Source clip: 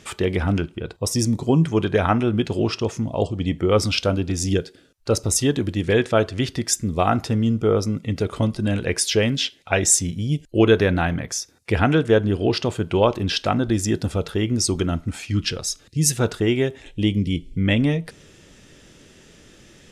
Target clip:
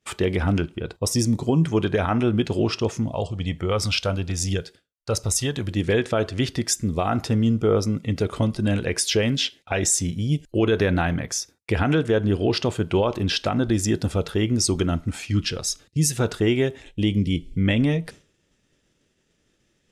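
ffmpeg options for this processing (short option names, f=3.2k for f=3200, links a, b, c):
-filter_complex "[0:a]alimiter=limit=-11dB:level=0:latency=1:release=78,agate=range=-33dB:threshold=-36dB:ratio=3:detection=peak,asettb=1/sr,asplit=3[a][b][c];[a]atrim=end=3.124[d];[b]atrim=start=3.12:end=5.71,asetpts=PTS-STARTPTS,afade=t=in:d=0.004:c=qsin,afade=t=out:st=2.586:d=0.004:c=qsin,equalizer=f=300:t=o:w=1.2:g=-9[e];[c]atrim=start=5.706[f];[d][e]acrossfade=d=0.004:c1=hsin:c2=qsin[g];[g][f]acrossfade=d=0.004:c1=qsin:c2=hsin"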